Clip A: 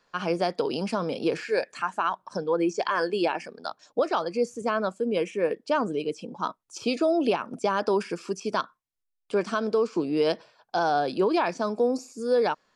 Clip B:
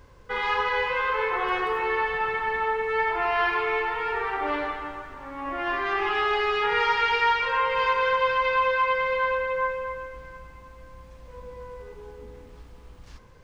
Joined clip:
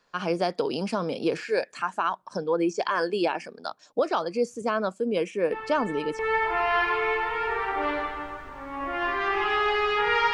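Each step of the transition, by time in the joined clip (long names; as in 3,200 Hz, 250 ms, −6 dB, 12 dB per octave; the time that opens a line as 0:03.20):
clip A
0:05.52: mix in clip B from 0:02.17 0.67 s −10.5 dB
0:06.19: continue with clip B from 0:02.84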